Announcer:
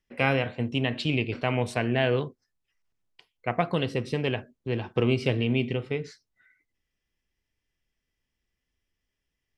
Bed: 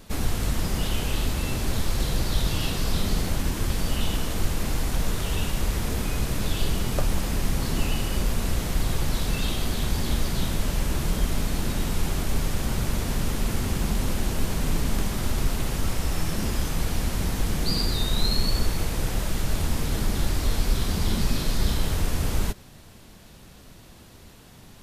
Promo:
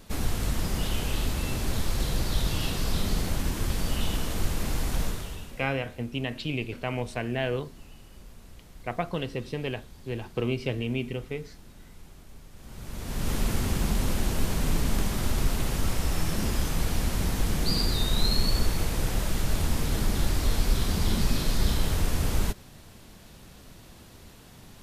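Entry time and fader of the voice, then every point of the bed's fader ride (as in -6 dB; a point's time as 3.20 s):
5.40 s, -4.5 dB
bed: 5.03 s -2.5 dB
5.73 s -23.5 dB
12.51 s -23.5 dB
13.32 s -1 dB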